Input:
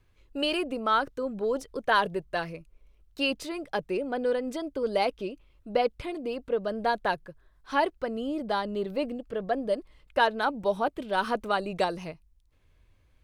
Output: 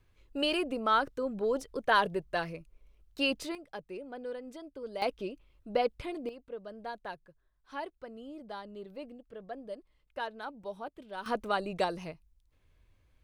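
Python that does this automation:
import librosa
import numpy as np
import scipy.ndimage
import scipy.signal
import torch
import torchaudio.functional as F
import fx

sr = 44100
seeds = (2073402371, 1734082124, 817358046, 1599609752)

y = fx.gain(x, sr, db=fx.steps((0.0, -2.0), (3.55, -12.5), (5.02, -3.5), (6.29, -14.0), (11.26, -3.5)))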